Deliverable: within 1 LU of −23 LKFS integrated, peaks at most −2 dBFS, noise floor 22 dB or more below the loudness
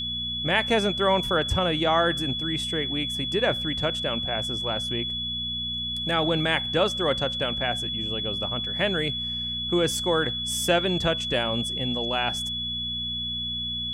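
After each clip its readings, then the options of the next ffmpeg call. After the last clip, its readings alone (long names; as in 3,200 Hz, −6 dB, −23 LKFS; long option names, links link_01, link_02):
mains hum 60 Hz; hum harmonics up to 240 Hz; level of the hum −36 dBFS; interfering tone 3,400 Hz; level of the tone −28 dBFS; integrated loudness −25.0 LKFS; sample peak −8.0 dBFS; target loudness −23.0 LKFS
→ -af "bandreject=frequency=60:width_type=h:width=4,bandreject=frequency=120:width_type=h:width=4,bandreject=frequency=180:width_type=h:width=4,bandreject=frequency=240:width_type=h:width=4"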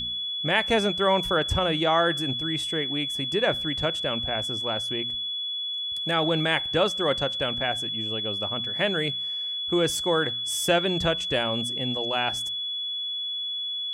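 mains hum none found; interfering tone 3,400 Hz; level of the tone −28 dBFS
→ -af "bandreject=frequency=3400:width=30"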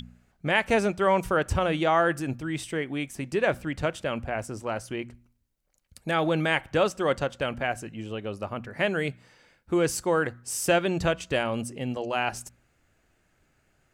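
interfering tone none found; integrated loudness −27.5 LKFS; sample peak −8.5 dBFS; target loudness −23.0 LKFS
→ -af "volume=4.5dB"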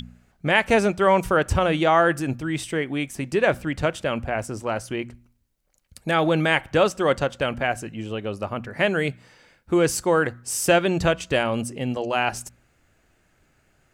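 integrated loudness −23.0 LKFS; sample peak −4.0 dBFS; background noise floor −64 dBFS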